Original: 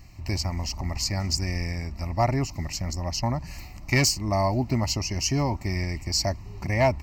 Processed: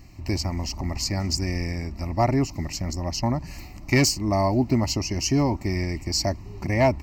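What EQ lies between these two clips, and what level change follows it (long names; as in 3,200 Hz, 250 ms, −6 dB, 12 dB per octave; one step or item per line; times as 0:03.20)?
parametric band 310 Hz +7 dB 1.2 octaves
0.0 dB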